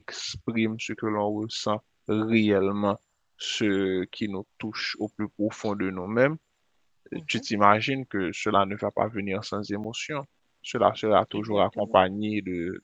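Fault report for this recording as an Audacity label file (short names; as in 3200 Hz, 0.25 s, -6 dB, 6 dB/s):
9.840000	9.850000	gap 5.5 ms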